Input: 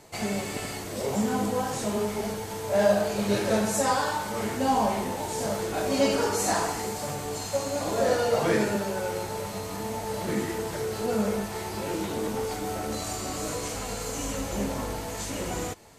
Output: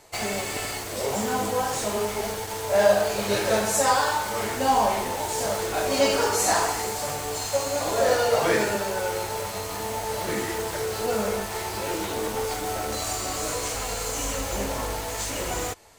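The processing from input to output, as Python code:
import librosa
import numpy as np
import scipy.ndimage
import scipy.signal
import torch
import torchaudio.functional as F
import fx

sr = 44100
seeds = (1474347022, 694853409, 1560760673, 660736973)

p1 = fx.peak_eq(x, sr, hz=190.0, db=-10.5, octaves=1.7)
p2 = fx.quant_dither(p1, sr, seeds[0], bits=6, dither='none')
p3 = p1 + (p2 * librosa.db_to_amplitude(-4.5))
y = p3 * librosa.db_to_amplitude(1.0)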